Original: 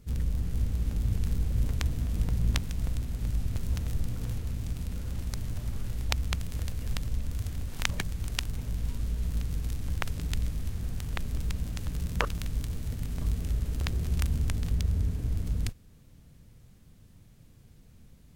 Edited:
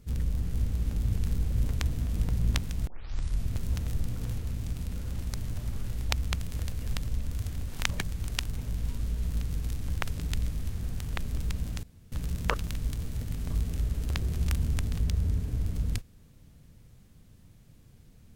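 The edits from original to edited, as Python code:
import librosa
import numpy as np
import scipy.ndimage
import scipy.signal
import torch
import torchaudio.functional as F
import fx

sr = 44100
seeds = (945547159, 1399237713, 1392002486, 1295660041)

y = fx.edit(x, sr, fx.tape_start(start_s=2.87, length_s=0.59),
    fx.insert_room_tone(at_s=11.83, length_s=0.29), tone=tone)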